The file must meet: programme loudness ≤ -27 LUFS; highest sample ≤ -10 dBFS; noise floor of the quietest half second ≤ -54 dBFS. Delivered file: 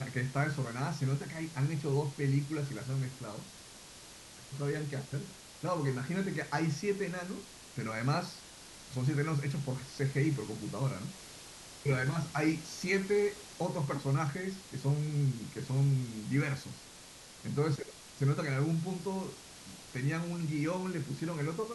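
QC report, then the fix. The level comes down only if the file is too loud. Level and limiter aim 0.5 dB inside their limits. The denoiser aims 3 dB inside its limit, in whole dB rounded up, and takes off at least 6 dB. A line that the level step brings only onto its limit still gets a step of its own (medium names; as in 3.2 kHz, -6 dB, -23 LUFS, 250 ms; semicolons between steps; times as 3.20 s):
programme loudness -34.5 LUFS: pass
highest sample -18.5 dBFS: pass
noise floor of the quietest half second -52 dBFS: fail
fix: noise reduction 6 dB, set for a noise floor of -52 dBFS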